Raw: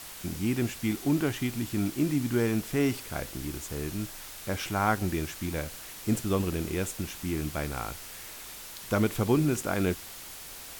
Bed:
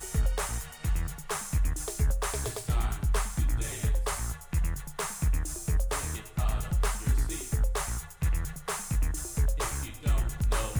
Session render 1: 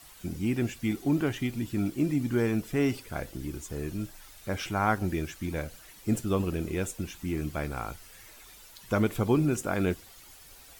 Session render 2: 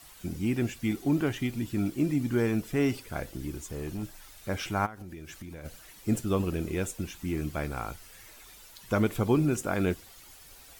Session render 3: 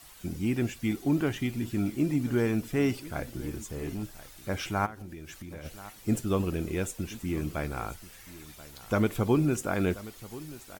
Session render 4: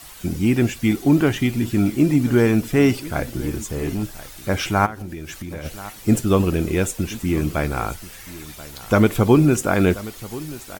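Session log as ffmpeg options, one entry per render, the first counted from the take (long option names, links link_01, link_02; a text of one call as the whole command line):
ffmpeg -i in.wav -af "afftdn=noise_reduction=11:noise_floor=-44" out.wav
ffmpeg -i in.wav -filter_complex "[0:a]asettb=1/sr,asplit=3[link_01][link_02][link_03];[link_01]atrim=end=3.524[link_04];[link_02]atrim=start=3.52:end=4.03,asetpts=PTS-STARTPTS,afade=type=in:duration=0.004:curve=qsin,afade=type=out:start_time=0.506:duration=0.004:curve=qsin,asoftclip=type=hard:threshold=-31dB[link_05];[link_03]atrim=start=4.026[link_06];[link_04][link_05]acrossfade=duration=0.004:curve1=hsin:curve2=qsin[link_07];[link_07][link_06]acrossfade=duration=0.004:curve1=qsin:curve2=hsin,asplit=3[link_08][link_09][link_10];[link_08]afade=type=out:start_time=4.85:duration=0.02[link_11];[link_09]acompressor=threshold=-38dB:ratio=16:attack=3.2:release=140:knee=1:detection=peak,afade=type=in:start_time=4.85:duration=0.02,afade=type=out:start_time=5.64:duration=0.02[link_12];[link_10]afade=type=in:start_time=5.64:duration=0.02[link_13];[link_11][link_12][link_13]amix=inputs=3:normalize=0" out.wav
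ffmpeg -i in.wav -af "aecho=1:1:1032:0.133" out.wav
ffmpeg -i in.wav -af "volume=10.5dB" out.wav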